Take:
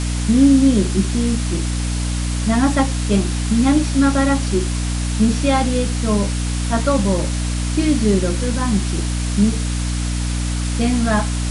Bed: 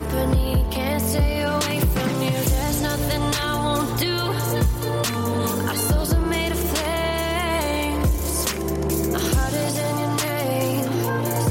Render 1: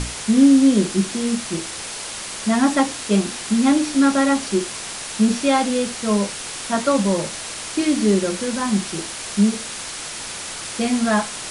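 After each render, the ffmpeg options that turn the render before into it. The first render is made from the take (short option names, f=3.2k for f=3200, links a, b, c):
-af "bandreject=f=60:t=h:w=6,bandreject=f=120:t=h:w=6,bandreject=f=180:t=h:w=6,bandreject=f=240:t=h:w=6,bandreject=f=300:t=h:w=6"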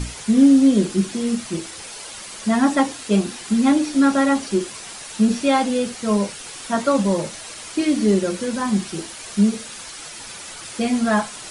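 -af "afftdn=nr=8:nf=-32"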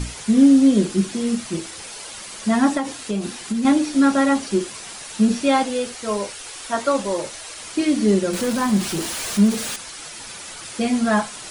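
-filter_complex "[0:a]asettb=1/sr,asplit=3[a][b][c];[a]atrim=end=2.774[d];[b]atrim=start=2.77:end=3.65,asetpts=PTS-STARTPTS,afade=t=in:d=0.004:c=qsin,afade=t=out:st=0.876:d=0.004:c=qsin,acompressor=threshold=-19dB:ratio=10:attack=3.2:release=140:knee=1:detection=peak[e];[c]atrim=start=3.646[f];[d][e]acrossfade=d=0.004:c1=hsin:c2=qsin[g];[g][f]acrossfade=d=0.004:c1=qsin:c2=hsin,asettb=1/sr,asplit=3[h][i][j];[h]atrim=end=5.634[k];[i]atrim=start=5.63:end=7.6,asetpts=PTS-STARTPTS,afade=t=in:d=0.004:c=qsin,afade=t=out:st=1.966:d=0.004:c=qsin,equalizer=f=180:t=o:w=0.77:g=-15[l];[j]atrim=start=7.596[m];[k][l]acrossfade=d=0.004:c1=hsin:c2=qsin[n];[n][m]acrossfade=d=0.004:c1=qsin:c2=hsin,asettb=1/sr,asplit=3[o][p][q];[o]atrim=end=8.334[r];[p]atrim=start=8.33:end=9.76,asetpts=PTS-STARTPTS,afade=t=in:d=0.004:c=qsin,afade=t=out:st=1.426:d=0.004:c=qsin,aeval=exprs='val(0)+0.5*0.0531*sgn(val(0))':c=same[s];[q]atrim=start=9.756[t];[r][s]acrossfade=d=0.004:c1=hsin:c2=qsin[u];[u][t]acrossfade=d=0.004:c1=qsin:c2=hsin"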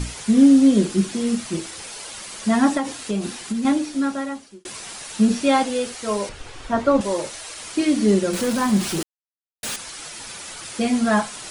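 -filter_complex "[0:a]asettb=1/sr,asplit=3[a][b][c];[a]atrim=end=6.294[d];[b]atrim=start=6.29:end=7.01,asetpts=PTS-STARTPTS,afade=t=in:d=0.004:c=qsin,afade=t=out:st=0.716:d=0.004:c=qsin,aemphasis=mode=reproduction:type=riaa[e];[c]atrim=start=7.006[f];[d][e]acrossfade=d=0.004:c1=hsin:c2=qsin[g];[g][f]acrossfade=d=0.004:c1=qsin:c2=hsin,asplit=4[h][i][j][k];[h]atrim=end=4.65,asetpts=PTS-STARTPTS,afade=t=out:st=3.33:d=1.32[l];[i]atrim=start=4.65:end=9.03,asetpts=PTS-STARTPTS,afade=t=in:d=0.004:c=hsin,afade=t=out:st=4.376:d=0.004:c=hsin[m];[j]atrim=start=9.03:end=9.63,asetpts=PTS-STARTPTS,volume=0[n];[k]atrim=start=9.63,asetpts=PTS-STARTPTS,afade=t=in:d=0.004:c=hsin[o];[l][m][n][o]concat=n=4:v=0:a=1"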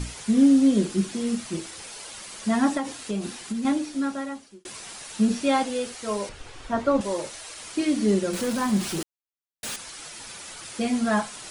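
-af "volume=-4.5dB"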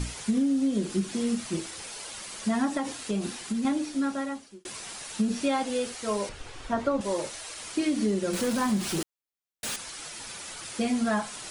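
-af "acompressor=threshold=-22dB:ratio=12"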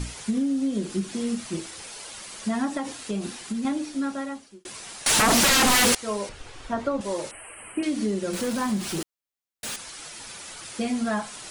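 -filter_complex "[0:a]asettb=1/sr,asplit=3[a][b][c];[a]atrim=end=5.064[d];[b]atrim=start=5.06:end=5.95,asetpts=PTS-STARTPTS,afade=t=in:d=0.004:c=qsin,afade=t=out:st=0.886:d=0.004:c=qsin,aeval=exprs='0.168*sin(PI/2*8.91*val(0)/0.168)':c=same[e];[c]atrim=start=5.946[f];[d][e]acrossfade=d=0.004:c1=hsin:c2=qsin[g];[g][f]acrossfade=d=0.004:c1=qsin:c2=hsin,asettb=1/sr,asplit=3[h][i][j];[h]atrim=end=7.314[k];[i]atrim=start=7.31:end=7.83,asetpts=PTS-STARTPTS,afade=t=in:d=0.004:c=qsin,afade=t=out:st=0.516:d=0.004:c=qsin,asuperstop=centerf=5000:order=20:qfactor=1[l];[j]atrim=start=7.826[m];[k][l]acrossfade=d=0.004:c1=hsin:c2=qsin[n];[n][m]acrossfade=d=0.004:c1=qsin:c2=hsin"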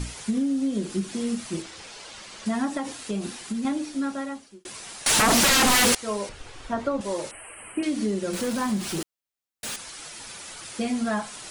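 -filter_complex "[0:a]asettb=1/sr,asplit=3[a][b][c];[a]atrim=end=1.624[d];[b]atrim=start=1.62:end=2.46,asetpts=PTS-STARTPTS,afade=t=in:d=0.004:c=qsin,afade=t=out:st=0.836:d=0.004:c=qsin,lowpass=6.1k[e];[c]atrim=start=2.456[f];[d][e]acrossfade=d=0.004:c1=hsin:c2=qsin[g];[g][f]acrossfade=d=0.004:c1=qsin:c2=hsin"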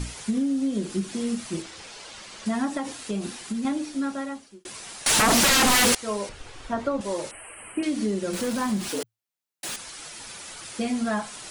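-filter_complex "[0:a]asettb=1/sr,asplit=3[a][b][c];[a]atrim=end=8.894[d];[b]atrim=start=8.89:end=9.69,asetpts=PTS-STARTPTS,afade=t=in:d=0.004:c=qsin,afade=t=out:st=0.796:d=0.004:c=qsin,afreqshift=110[e];[c]atrim=start=9.686[f];[d][e]acrossfade=d=0.004:c1=hsin:c2=qsin[g];[g][f]acrossfade=d=0.004:c1=qsin:c2=hsin"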